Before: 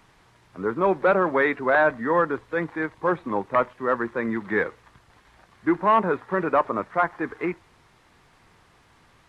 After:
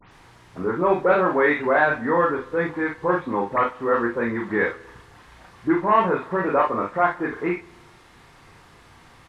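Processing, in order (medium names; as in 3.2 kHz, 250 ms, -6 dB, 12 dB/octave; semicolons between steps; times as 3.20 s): delay that grows with frequency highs late, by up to 108 ms; in parallel at +1.5 dB: compression, threshold -35 dBFS, peak gain reduction 19 dB; on the sum: early reflections 34 ms -4 dB, 54 ms -8 dB; spring tank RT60 1.2 s, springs 46 ms, DRR 19 dB; trim -1.5 dB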